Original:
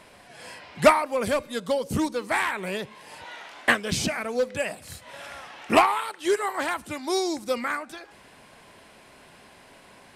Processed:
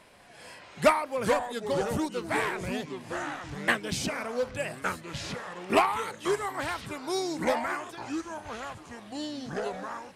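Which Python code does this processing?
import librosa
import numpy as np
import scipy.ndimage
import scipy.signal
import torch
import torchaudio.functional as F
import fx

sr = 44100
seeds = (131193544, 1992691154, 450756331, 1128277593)

y = fx.echo_pitch(x, sr, ms=205, semitones=-4, count=3, db_per_echo=-6.0)
y = F.gain(torch.from_numpy(y), -5.0).numpy()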